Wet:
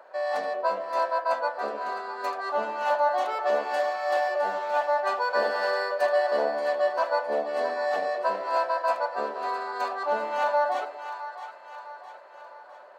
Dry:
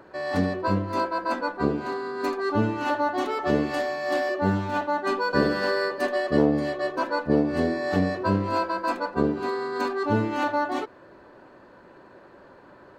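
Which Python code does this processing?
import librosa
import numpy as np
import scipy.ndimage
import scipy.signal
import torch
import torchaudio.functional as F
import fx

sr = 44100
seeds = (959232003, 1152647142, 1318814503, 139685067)

y = scipy.signal.sosfilt(scipy.signal.cheby1(6, 1.0, 210.0, 'highpass', fs=sr, output='sos'), x)
y = fx.low_shelf_res(y, sr, hz=430.0, db=-13.0, q=3.0)
y = fx.echo_split(y, sr, split_hz=770.0, low_ms=109, high_ms=660, feedback_pct=52, wet_db=-10)
y = F.gain(torch.from_numpy(y), -2.5).numpy()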